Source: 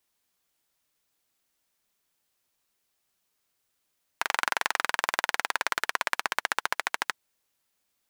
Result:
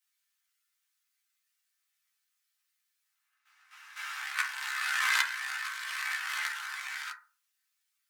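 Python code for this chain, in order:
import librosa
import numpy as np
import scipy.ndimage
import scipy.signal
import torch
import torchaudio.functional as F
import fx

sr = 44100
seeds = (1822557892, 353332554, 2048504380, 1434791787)

y = fx.spec_swells(x, sr, rise_s=1.16)
y = scipy.signal.sosfilt(scipy.signal.butter(4, 1400.0, 'highpass', fs=sr, output='sos'), y)
y = fx.level_steps(y, sr, step_db=13)
y = fx.chorus_voices(y, sr, voices=6, hz=0.4, base_ms=15, depth_ms=1.4, mix_pct=55)
y = fx.rev_fdn(y, sr, rt60_s=0.36, lf_ratio=1.2, hf_ratio=0.35, size_ms=23.0, drr_db=-1.0)
y = fx.pre_swell(y, sr, db_per_s=21.0, at=(4.61, 6.63))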